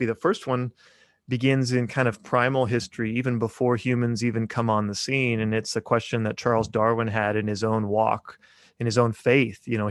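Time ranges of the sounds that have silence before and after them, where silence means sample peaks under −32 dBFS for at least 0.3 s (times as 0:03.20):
0:01.30–0:08.30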